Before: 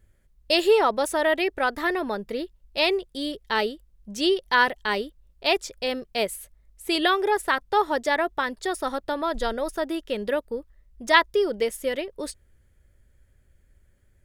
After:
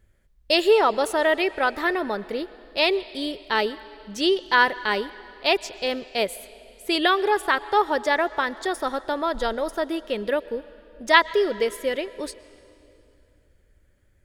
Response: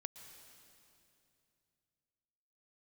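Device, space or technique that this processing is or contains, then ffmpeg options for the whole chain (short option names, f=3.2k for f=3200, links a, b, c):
filtered reverb send: -filter_complex "[0:a]asplit=2[a][b];[b]highpass=f=270:p=1,lowpass=6.9k[c];[1:a]atrim=start_sample=2205[d];[c][d]afir=irnorm=-1:irlink=0,volume=-2dB[e];[a][e]amix=inputs=2:normalize=0,volume=-1.5dB"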